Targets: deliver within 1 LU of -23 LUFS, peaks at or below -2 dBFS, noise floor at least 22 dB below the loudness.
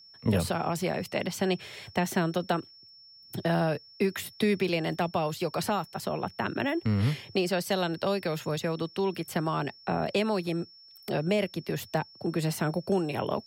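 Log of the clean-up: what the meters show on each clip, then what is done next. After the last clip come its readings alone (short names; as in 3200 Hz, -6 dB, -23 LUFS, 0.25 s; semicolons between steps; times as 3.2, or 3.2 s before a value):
steady tone 5400 Hz; tone level -51 dBFS; loudness -30.0 LUFS; peak -15.0 dBFS; loudness target -23.0 LUFS
-> notch 5400 Hz, Q 30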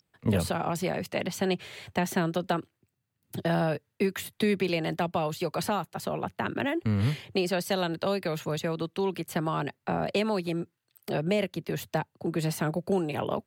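steady tone none; loudness -30.0 LUFS; peak -15.0 dBFS; loudness target -23.0 LUFS
-> gain +7 dB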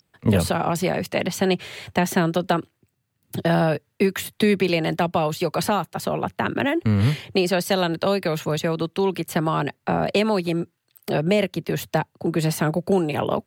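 loudness -23.0 LUFS; peak -8.0 dBFS; noise floor -74 dBFS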